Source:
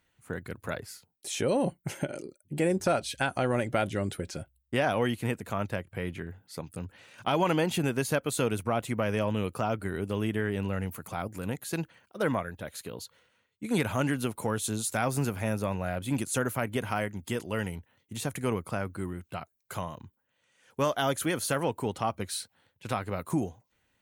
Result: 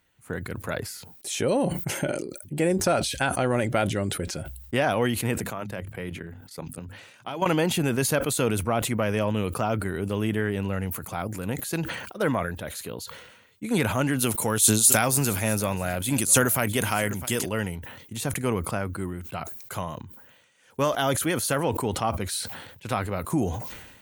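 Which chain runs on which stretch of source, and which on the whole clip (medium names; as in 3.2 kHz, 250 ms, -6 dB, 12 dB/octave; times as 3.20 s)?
5.38–7.46 s: high-pass 87 Hz 24 dB/octave + hum notches 50/100/150/200/250 Hz + level held to a coarse grid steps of 12 dB
14.19–17.49 s: treble shelf 3.1 kHz +11 dB + delay 657 ms -21 dB
whole clip: treble shelf 11 kHz +4.5 dB; decay stretcher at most 52 dB/s; trim +3 dB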